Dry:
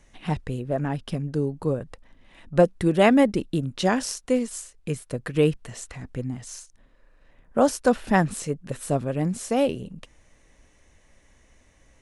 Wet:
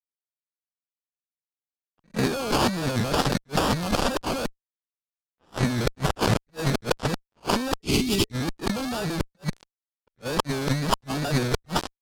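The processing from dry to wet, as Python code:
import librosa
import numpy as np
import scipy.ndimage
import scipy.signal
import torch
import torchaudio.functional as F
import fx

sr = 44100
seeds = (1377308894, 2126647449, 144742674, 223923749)

y = x[::-1].copy()
y = fx.sample_hold(y, sr, seeds[0], rate_hz=2000.0, jitter_pct=0)
y = scipy.signal.sosfilt(scipy.signal.butter(2, 8900.0, 'lowpass', fs=sr, output='sos'), y)
y = fx.low_shelf(y, sr, hz=130.0, db=-6.5)
y = fx.wow_flutter(y, sr, seeds[1], rate_hz=2.1, depth_cents=110.0)
y = fx.dynamic_eq(y, sr, hz=4500.0, q=2.5, threshold_db=-56.0, ratio=4.0, max_db=6)
y = fx.fuzz(y, sr, gain_db=41.0, gate_db=-44.0)
y = fx.spec_box(y, sr, start_s=7.81, length_s=0.51, low_hz=450.0, high_hz=1900.0, gain_db=-18)
y = fx.env_lowpass(y, sr, base_hz=2900.0, full_db=-15.0)
y = fx.over_compress(y, sr, threshold_db=-19.0, ratio=-0.5)
y = fx.attack_slew(y, sr, db_per_s=450.0)
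y = y * 10.0 ** (-3.5 / 20.0)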